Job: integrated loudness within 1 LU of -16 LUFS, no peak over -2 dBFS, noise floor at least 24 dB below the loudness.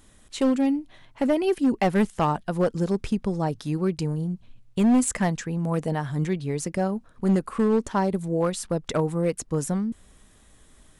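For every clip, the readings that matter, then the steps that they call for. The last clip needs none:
clipped 1.8%; flat tops at -15.5 dBFS; loudness -25.5 LUFS; peak -15.5 dBFS; loudness target -16.0 LUFS
-> clip repair -15.5 dBFS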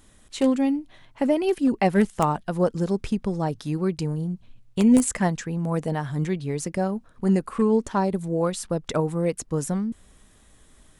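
clipped 0.0%; loudness -24.5 LUFS; peak -6.5 dBFS; loudness target -16.0 LUFS
-> gain +8.5 dB; limiter -2 dBFS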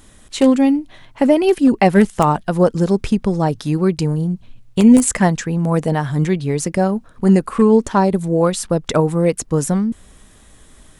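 loudness -16.5 LUFS; peak -2.0 dBFS; noise floor -47 dBFS

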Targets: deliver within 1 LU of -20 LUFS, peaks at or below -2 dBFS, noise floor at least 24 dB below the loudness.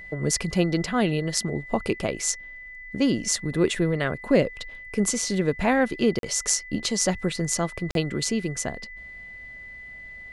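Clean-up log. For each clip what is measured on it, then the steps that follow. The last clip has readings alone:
dropouts 2; longest dropout 42 ms; steady tone 2000 Hz; tone level -39 dBFS; loudness -25.0 LUFS; peak -4.5 dBFS; loudness target -20.0 LUFS
-> interpolate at 6.19/7.91, 42 ms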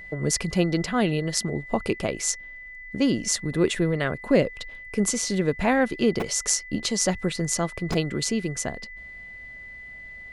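dropouts 0; steady tone 2000 Hz; tone level -39 dBFS
-> notch 2000 Hz, Q 30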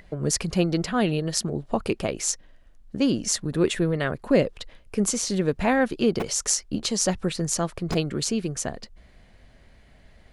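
steady tone none; loudness -25.0 LUFS; peak -4.5 dBFS; loudness target -20.0 LUFS
-> gain +5 dB; limiter -2 dBFS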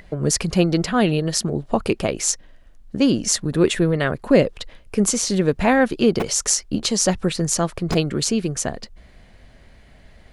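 loudness -20.5 LUFS; peak -2.0 dBFS; noise floor -49 dBFS

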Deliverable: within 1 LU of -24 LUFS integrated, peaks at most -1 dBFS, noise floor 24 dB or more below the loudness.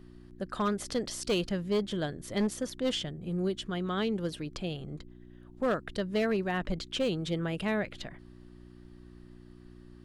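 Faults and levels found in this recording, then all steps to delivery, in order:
clipped 1.0%; flat tops at -23.0 dBFS; hum 60 Hz; harmonics up to 360 Hz; hum level -50 dBFS; loudness -32.5 LUFS; peak -23.0 dBFS; loudness target -24.0 LUFS
-> clip repair -23 dBFS; de-hum 60 Hz, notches 6; gain +8.5 dB

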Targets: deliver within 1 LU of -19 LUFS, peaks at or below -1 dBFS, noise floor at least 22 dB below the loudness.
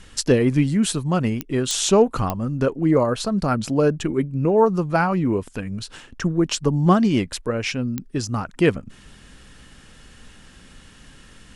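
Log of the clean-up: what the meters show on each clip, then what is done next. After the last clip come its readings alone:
clicks 4; loudness -21.0 LUFS; peak -3.5 dBFS; loudness target -19.0 LUFS
-> de-click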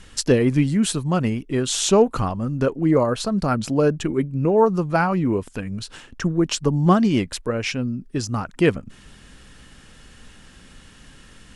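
clicks 0; loudness -21.0 LUFS; peak -3.5 dBFS; loudness target -19.0 LUFS
-> gain +2 dB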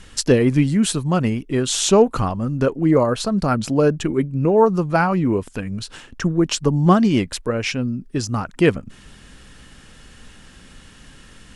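loudness -19.0 LUFS; peak -1.5 dBFS; noise floor -46 dBFS

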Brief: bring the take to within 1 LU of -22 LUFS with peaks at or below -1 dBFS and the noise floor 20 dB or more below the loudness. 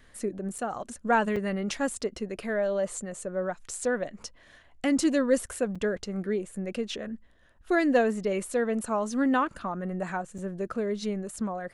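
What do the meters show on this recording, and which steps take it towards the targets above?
dropouts 4; longest dropout 5.2 ms; loudness -29.5 LUFS; peak -11.5 dBFS; loudness target -22.0 LUFS
-> interpolate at 0.58/1.36/5.75/10.38, 5.2 ms; gain +7.5 dB

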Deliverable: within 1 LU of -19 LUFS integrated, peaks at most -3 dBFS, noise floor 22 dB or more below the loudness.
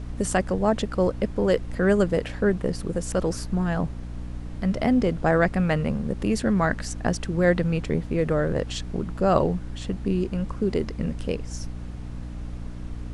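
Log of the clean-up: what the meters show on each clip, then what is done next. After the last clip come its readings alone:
hum 60 Hz; harmonics up to 300 Hz; hum level -33 dBFS; noise floor -35 dBFS; noise floor target -47 dBFS; loudness -25.0 LUFS; peak -6.5 dBFS; loudness target -19.0 LUFS
-> de-hum 60 Hz, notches 5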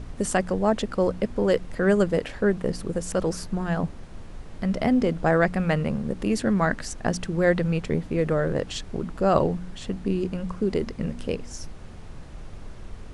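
hum none; noise floor -40 dBFS; noise floor target -48 dBFS
-> noise print and reduce 8 dB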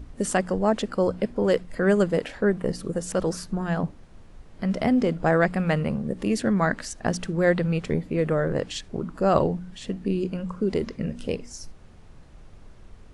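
noise floor -48 dBFS; loudness -25.5 LUFS; peak -6.5 dBFS; loudness target -19.0 LUFS
-> gain +6.5 dB; limiter -3 dBFS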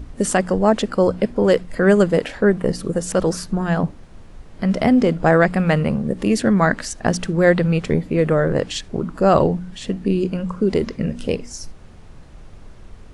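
loudness -19.0 LUFS; peak -3.0 dBFS; noise floor -41 dBFS

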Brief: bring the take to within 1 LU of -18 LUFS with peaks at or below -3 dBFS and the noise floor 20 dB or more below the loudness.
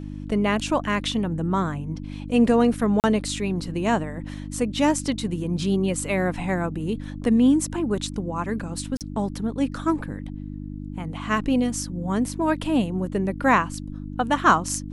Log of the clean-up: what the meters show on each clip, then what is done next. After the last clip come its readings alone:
dropouts 2; longest dropout 38 ms; hum 50 Hz; harmonics up to 300 Hz; hum level -31 dBFS; loudness -24.0 LUFS; peak -4.0 dBFS; loudness target -18.0 LUFS
-> interpolate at 3/8.97, 38 ms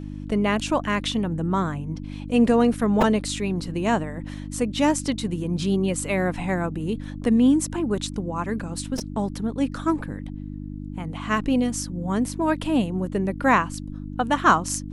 dropouts 0; hum 50 Hz; harmonics up to 300 Hz; hum level -31 dBFS
-> de-hum 50 Hz, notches 6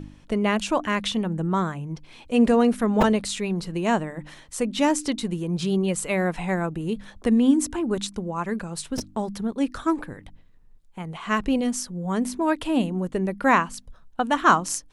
hum none; loudness -24.0 LUFS; peak -4.5 dBFS; loudness target -18.0 LUFS
-> gain +6 dB; limiter -3 dBFS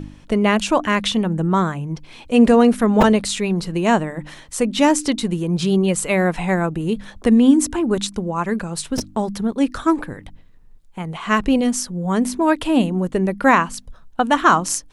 loudness -18.5 LUFS; peak -3.0 dBFS; noise floor -45 dBFS

